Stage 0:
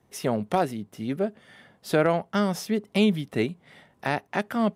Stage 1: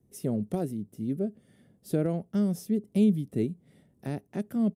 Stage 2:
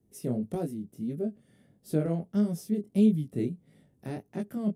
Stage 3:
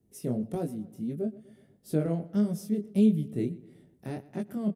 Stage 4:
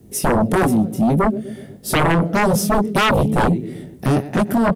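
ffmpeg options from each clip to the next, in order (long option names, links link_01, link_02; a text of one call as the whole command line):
ffmpeg -i in.wav -af "firequalizer=gain_entry='entry(200,0);entry(360,-3);entry(890,-21);entry(3100,-18);entry(9100,-4)':delay=0.05:min_phase=1" out.wav
ffmpeg -i in.wav -af "flanger=delay=18:depth=6.5:speed=1.6,volume=1.5dB" out.wav
ffmpeg -i in.wav -filter_complex "[0:a]asplit=2[link_01][link_02];[link_02]adelay=123,lowpass=frequency=4100:poles=1,volume=-19dB,asplit=2[link_03][link_04];[link_04]adelay=123,lowpass=frequency=4100:poles=1,volume=0.52,asplit=2[link_05][link_06];[link_06]adelay=123,lowpass=frequency=4100:poles=1,volume=0.52,asplit=2[link_07][link_08];[link_08]adelay=123,lowpass=frequency=4100:poles=1,volume=0.52[link_09];[link_01][link_03][link_05][link_07][link_09]amix=inputs=5:normalize=0" out.wav
ffmpeg -i in.wav -af "aeval=exprs='0.211*sin(PI/2*7.94*val(0)/0.211)':channel_layout=same,volume=1.5dB" out.wav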